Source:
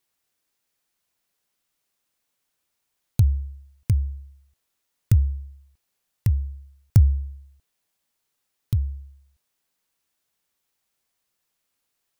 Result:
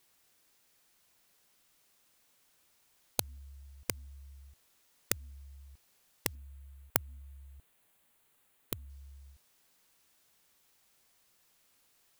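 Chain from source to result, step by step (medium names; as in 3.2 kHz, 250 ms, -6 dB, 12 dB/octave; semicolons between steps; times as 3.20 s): 6.35–8.90 s: peaking EQ 5.4 kHz -11.5 dB 0.72 oct; spectrum-flattening compressor 10:1; trim -4.5 dB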